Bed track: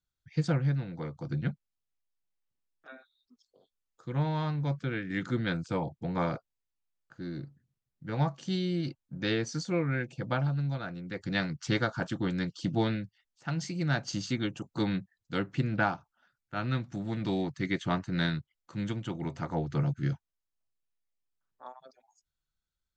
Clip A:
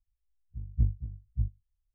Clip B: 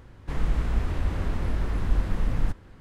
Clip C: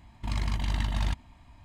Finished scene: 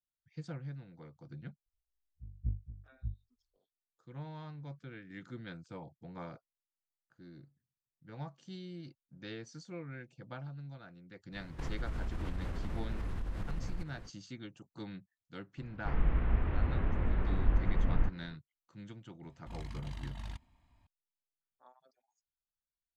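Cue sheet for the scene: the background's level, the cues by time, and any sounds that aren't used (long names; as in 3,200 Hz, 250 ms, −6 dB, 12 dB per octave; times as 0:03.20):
bed track −15 dB
0:01.66: mix in A −9.5 dB
0:11.31: mix in B −1.5 dB, fades 0.05 s + downward compressor, threshold −32 dBFS
0:15.57: mix in B −4.5 dB, fades 0.02 s + low-pass filter 2,700 Hz 24 dB per octave
0:19.23: mix in C −15 dB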